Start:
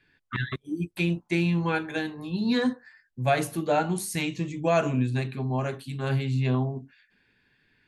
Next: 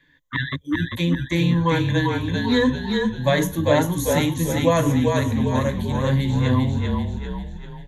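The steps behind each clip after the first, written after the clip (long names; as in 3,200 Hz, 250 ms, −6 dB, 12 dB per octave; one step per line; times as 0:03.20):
EQ curve with evenly spaced ripples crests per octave 1.1, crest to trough 14 dB
echo with shifted repeats 394 ms, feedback 48%, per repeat −34 Hz, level −3.5 dB
level +3 dB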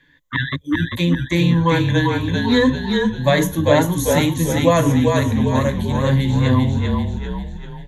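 tape wow and flutter 24 cents
level +3.5 dB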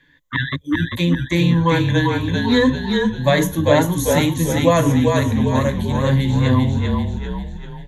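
no processing that can be heard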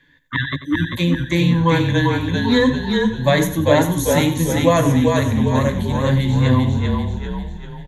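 repeating echo 91 ms, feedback 34%, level −13.5 dB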